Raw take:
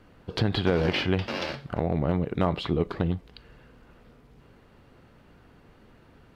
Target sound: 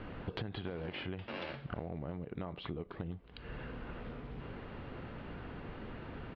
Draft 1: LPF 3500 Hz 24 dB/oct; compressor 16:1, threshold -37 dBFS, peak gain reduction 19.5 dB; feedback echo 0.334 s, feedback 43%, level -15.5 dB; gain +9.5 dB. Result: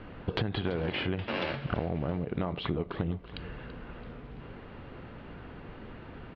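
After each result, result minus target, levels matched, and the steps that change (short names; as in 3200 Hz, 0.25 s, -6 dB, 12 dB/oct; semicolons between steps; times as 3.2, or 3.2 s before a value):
compressor: peak gain reduction -9.5 dB; echo-to-direct +10 dB
change: compressor 16:1, threshold -47 dBFS, peak gain reduction 29 dB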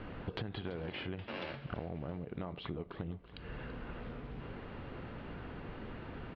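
echo-to-direct +10 dB
change: feedback echo 0.334 s, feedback 43%, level -25.5 dB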